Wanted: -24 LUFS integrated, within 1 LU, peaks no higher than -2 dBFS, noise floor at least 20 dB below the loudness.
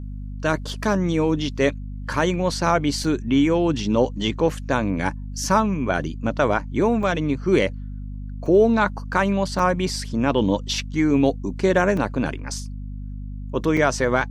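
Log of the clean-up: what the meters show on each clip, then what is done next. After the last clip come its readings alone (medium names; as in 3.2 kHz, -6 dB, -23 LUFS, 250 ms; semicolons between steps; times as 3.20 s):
dropouts 6; longest dropout 3.4 ms; hum 50 Hz; highest harmonic 250 Hz; hum level -29 dBFS; loudness -22.0 LUFS; peak level -5.0 dBFS; loudness target -24.0 LUFS
-> interpolate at 3.04/7.03/8.46/9.59/11.97/13.77 s, 3.4 ms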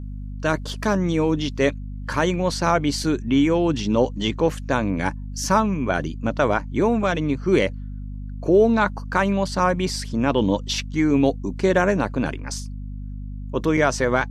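dropouts 0; hum 50 Hz; highest harmonic 250 Hz; hum level -29 dBFS
-> de-hum 50 Hz, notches 5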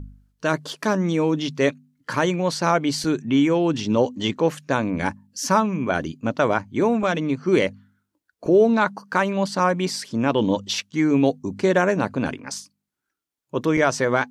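hum not found; loudness -22.0 LUFS; peak level -5.5 dBFS; loudness target -24.0 LUFS
-> trim -2 dB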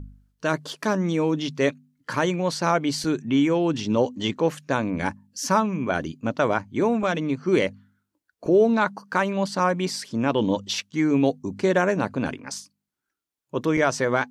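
loudness -24.0 LUFS; peak level -7.5 dBFS; noise floor -84 dBFS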